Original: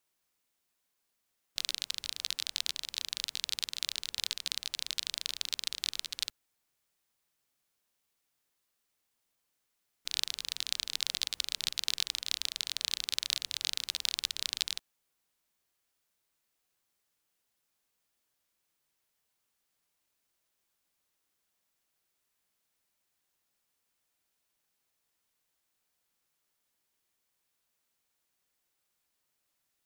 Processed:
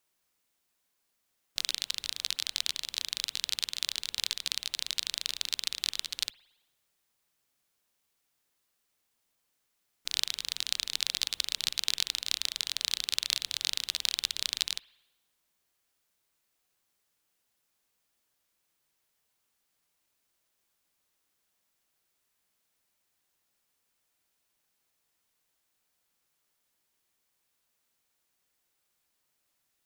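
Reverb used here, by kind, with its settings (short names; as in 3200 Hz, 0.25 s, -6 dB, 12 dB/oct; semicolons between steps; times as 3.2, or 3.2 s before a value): spring tank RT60 1 s, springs 56 ms, chirp 55 ms, DRR 20 dB; gain +2.5 dB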